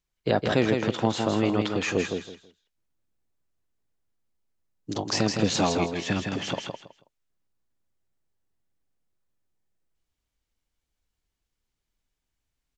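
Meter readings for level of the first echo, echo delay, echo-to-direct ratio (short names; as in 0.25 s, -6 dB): -5.0 dB, 0.162 s, -5.0 dB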